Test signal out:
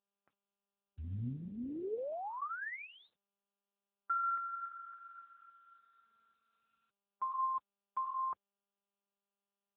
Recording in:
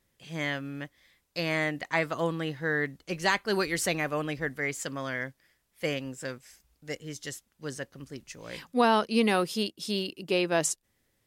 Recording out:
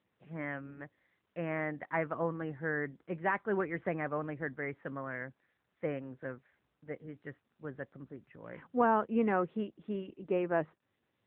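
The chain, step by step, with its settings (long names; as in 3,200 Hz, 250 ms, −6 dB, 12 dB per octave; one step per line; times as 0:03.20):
low-pass filter 1,800 Hz 24 dB per octave
level −3.5 dB
AMR narrowband 10.2 kbit/s 8,000 Hz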